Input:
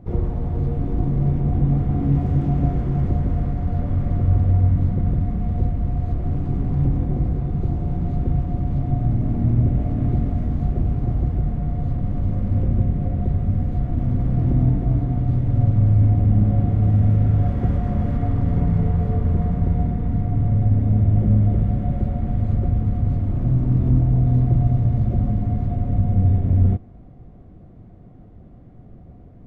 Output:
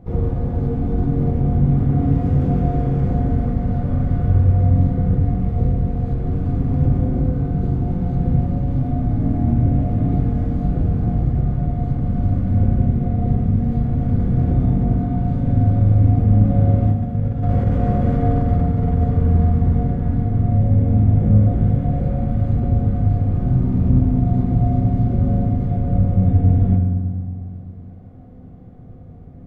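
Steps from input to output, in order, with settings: 16.91–19.04 negative-ratio compressor -19 dBFS, ratio -0.5; reverb RT60 1.8 s, pre-delay 3 ms, DRR 1 dB

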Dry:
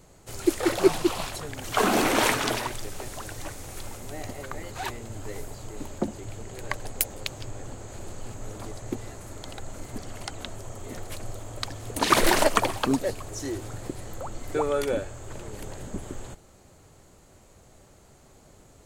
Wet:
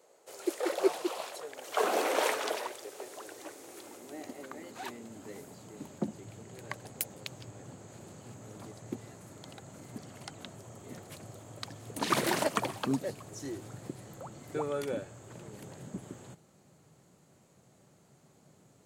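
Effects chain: high-pass sweep 490 Hz -> 150 Hz, 2.55–6.16; gain -9 dB

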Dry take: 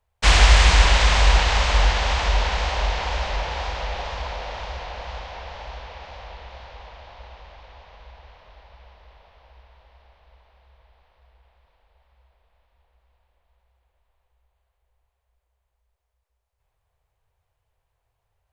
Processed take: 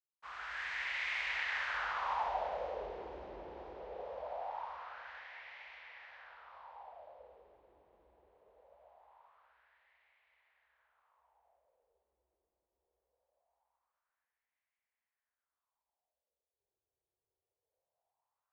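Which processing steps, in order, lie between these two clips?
opening faded in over 2.13 s; wah 0.22 Hz 340–2100 Hz, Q 4; gain -3 dB

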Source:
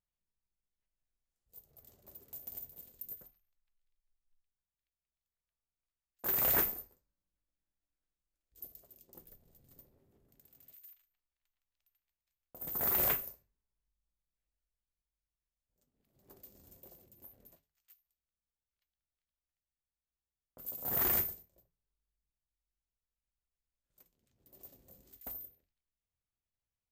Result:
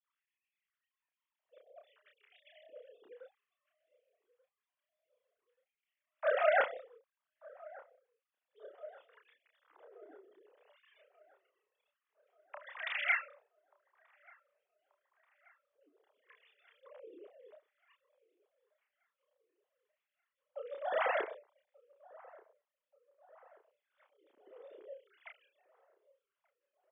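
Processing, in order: sine-wave speech; doubler 31 ms -3.5 dB; LFO high-pass sine 0.56 Hz 220–2400 Hz; band-limited delay 1.183 s, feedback 53%, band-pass 710 Hz, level -22 dB; gain -3 dB

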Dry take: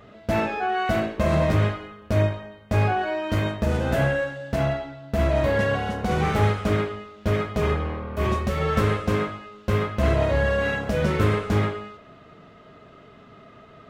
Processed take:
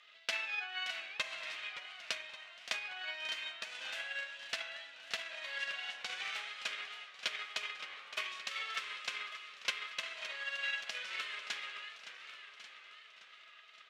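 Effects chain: compressor 5:1, threshold -24 dBFS, peak gain reduction 8.5 dB; transient shaper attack +4 dB, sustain 0 dB; ladder band-pass 3700 Hz, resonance 25%; on a send: echo 1.097 s -15 dB; on the sum: transient shaper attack +10 dB, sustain -3 dB; warbling echo 0.571 s, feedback 60%, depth 162 cents, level -12 dB; gain +9.5 dB

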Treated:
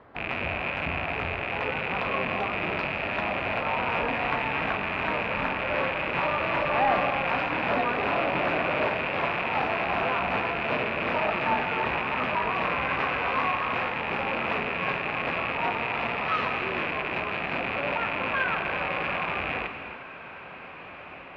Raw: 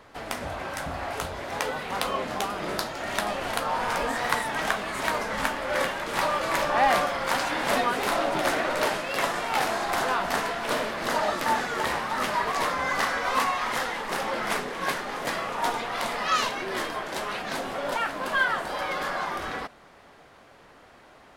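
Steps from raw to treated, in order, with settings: rattling part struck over -47 dBFS, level -10 dBFS; HPF 45 Hz; high shelf 3300 Hz -11 dB; in parallel at -5 dB: soft clip -23 dBFS, distortion -10 dB; on the sum: air absorption 340 m; diffused feedback echo 1.821 s, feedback 60%, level -16 dB; non-linear reverb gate 0.38 s flat, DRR 6.5 dB; gain -2.5 dB

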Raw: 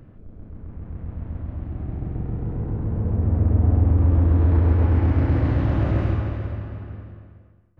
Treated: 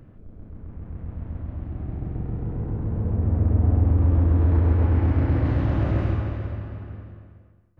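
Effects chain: 4.24–5.46 air absorption 53 m; gain -1.5 dB

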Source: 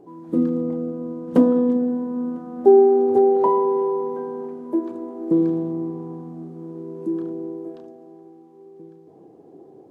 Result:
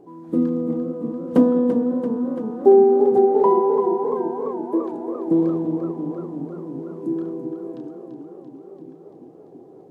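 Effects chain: warbling echo 0.341 s, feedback 71%, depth 89 cents, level -9.5 dB

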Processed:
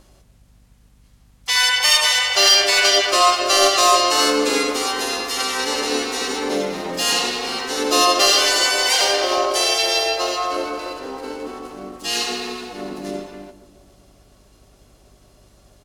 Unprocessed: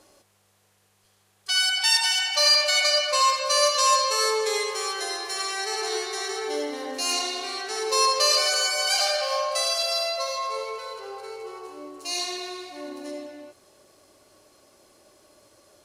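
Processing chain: sample leveller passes 1; tape echo 0.14 s, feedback 73%, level -12.5 dB, low-pass 1100 Hz; hum 50 Hz, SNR 33 dB; harmoniser -12 st -18 dB, -7 st -2 dB, +3 st -5 dB

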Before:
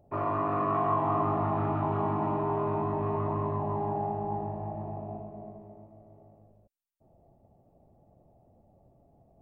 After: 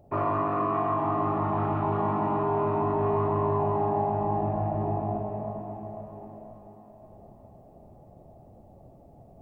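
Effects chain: in parallel at -1.5 dB: limiter -27 dBFS, peak gain reduction 9.5 dB; on the sum: vocal rider within 4 dB 0.5 s; diffused feedback echo 0.485 s, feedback 55%, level -9.5 dB

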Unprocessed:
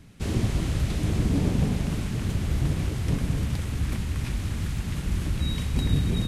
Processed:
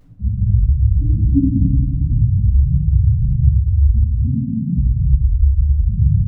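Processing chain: notches 60/120/180 Hz; 4.18–4.76 HPF 140 Hz 24 dB/oct; sample leveller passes 5; loudest bins only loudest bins 2; narrowing echo 89 ms, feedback 84%, band-pass 450 Hz, level -4 dB; plate-style reverb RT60 0.73 s, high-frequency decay 0.95×, DRR -10 dB; record warp 45 rpm, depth 100 cents; gain -5 dB

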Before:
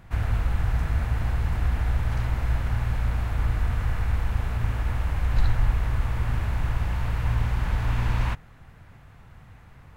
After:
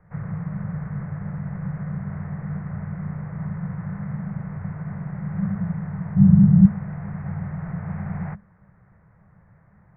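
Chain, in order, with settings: 6.15–6.65 tilt -4 dB/oct; frequency shift -210 Hz; elliptic low-pass 2000 Hz, stop band 50 dB; gain -5.5 dB

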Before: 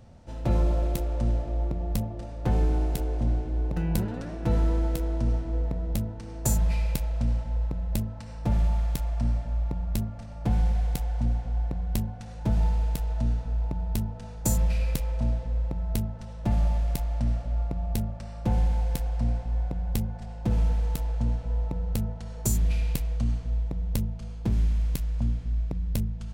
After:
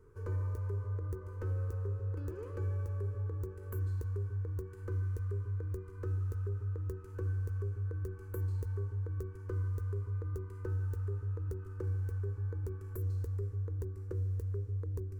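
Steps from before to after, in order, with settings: compressor 2:1, threshold -31 dBFS, peak gain reduction 7 dB; speed mistake 45 rpm record played at 78 rpm; EQ curve 100 Hz 0 dB, 210 Hz -22 dB, 460 Hz +6 dB, 710 Hz -27 dB, 1000 Hz -9 dB, 1500 Hz -6 dB, 3500 Hz -21 dB, 6300 Hz -11 dB; gain -5 dB

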